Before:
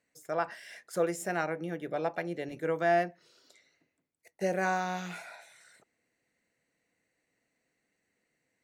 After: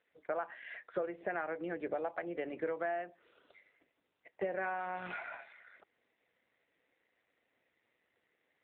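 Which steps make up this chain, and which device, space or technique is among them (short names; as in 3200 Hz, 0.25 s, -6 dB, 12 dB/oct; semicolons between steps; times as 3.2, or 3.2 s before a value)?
3.05–4.86 dynamic EQ 5600 Hz, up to +7 dB, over -54 dBFS, Q 0.77; voicemail (BPF 340–2700 Hz; compressor 10:1, threshold -38 dBFS, peak gain reduction 16 dB; gain +5.5 dB; AMR-NB 7.4 kbps 8000 Hz)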